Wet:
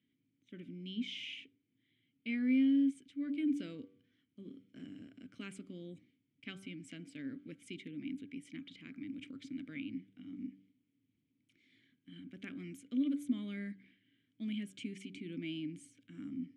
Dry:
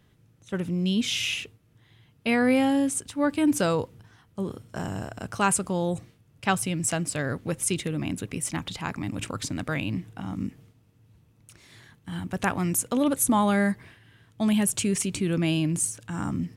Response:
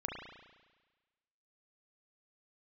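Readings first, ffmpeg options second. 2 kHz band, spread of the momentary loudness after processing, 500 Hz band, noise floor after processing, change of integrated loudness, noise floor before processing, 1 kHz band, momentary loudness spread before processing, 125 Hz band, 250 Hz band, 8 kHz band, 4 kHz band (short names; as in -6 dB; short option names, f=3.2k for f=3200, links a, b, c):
-17.5 dB, 18 LU, -24.0 dB, -81 dBFS, -13.0 dB, -61 dBFS, -37.0 dB, 13 LU, -21.5 dB, -10.5 dB, -33.5 dB, -15.5 dB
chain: -filter_complex "[0:a]asplit=3[a][b][c];[a]bandpass=f=270:t=q:w=8,volume=0dB[d];[b]bandpass=f=2.29k:t=q:w=8,volume=-6dB[e];[c]bandpass=f=3.01k:t=q:w=8,volume=-9dB[f];[d][e][f]amix=inputs=3:normalize=0,bandreject=f=96.36:t=h:w=4,bandreject=f=192.72:t=h:w=4,bandreject=f=289.08:t=h:w=4,bandreject=f=385.44:t=h:w=4,bandreject=f=481.8:t=h:w=4,bandreject=f=578.16:t=h:w=4,bandreject=f=674.52:t=h:w=4,bandreject=f=770.88:t=h:w=4,bandreject=f=867.24:t=h:w=4,bandreject=f=963.6:t=h:w=4,bandreject=f=1.05996k:t=h:w=4,bandreject=f=1.15632k:t=h:w=4,bandreject=f=1.25268k:t=h:w=4,bandreject=f=1.34904k:t=h:w=4,bandreject=f=1.4454k:t=h:w=4,bandreject=f=1.54176k:t=h:w=4,bandreject=f=1.63812k:t=h:w=4,volume=-4.5dB"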